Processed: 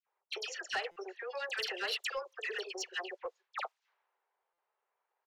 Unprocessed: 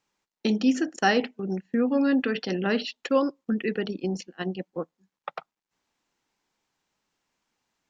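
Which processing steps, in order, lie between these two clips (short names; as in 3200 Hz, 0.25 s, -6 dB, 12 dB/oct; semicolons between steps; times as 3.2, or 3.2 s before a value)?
compressor 10:1, threshold -30 dBFS, peak gain reduction 14 dB; low shelf 500 Hz -9 dB; tempo 1.5×; overdrive pedal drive 16 dB, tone 3800 Hz, clips at -19.5 dBFS; brick-wall FIR high-pass 360 Hz; dispersion lows, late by 73 ms, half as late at 1900 Hz; low-pass opened by the level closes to 780 Hz, open at -34 dBFS; high shelf 2400 Hz +6.5 dB; soft clip -22.5 dBFS, distortion -19 dB; stuck buffer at 0.91/4.53, samples 256, times 8; gain -4 dB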